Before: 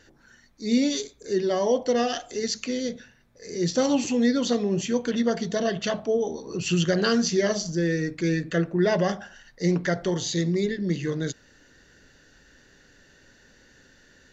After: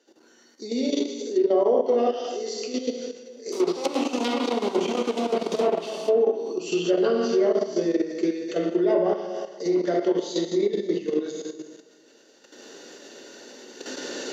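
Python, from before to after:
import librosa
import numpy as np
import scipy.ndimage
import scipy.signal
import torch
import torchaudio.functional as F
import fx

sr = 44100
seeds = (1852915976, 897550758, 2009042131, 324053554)

y = fx.recorder_agc(x, sr, target_db=-18.0, rise_db_per_s=8.4, max_gain_db=30)
y = fx.quant_companded(y, sr, bits=2, at=(3.52, 5.9))
y = fx.peak_eq(y, sr, hz=1700.0, db=-10.5, octaves=0.79)
y = fx.rev_plate(y, sr, seeds[0], rt60_s=1.6, hf_ratio=0.9, predelay_ms=0, drr_db=-2.0)
y = fx.level_steps(y, sr, step_db=11)
y = scipy.signal.sosfilt(scipy.signal.butter(4, 330.0, 'highpass', fs=sr, output='sos'), y)
y = fx.env_lowpass_down(y, sr, base_hz=1600.0, full_db=-20.0)
y = fx.low_shelf(y, sr, hz=460.0, db=9.0)
y = fx.notch(y, sr, hz=1700.0, q=16.0)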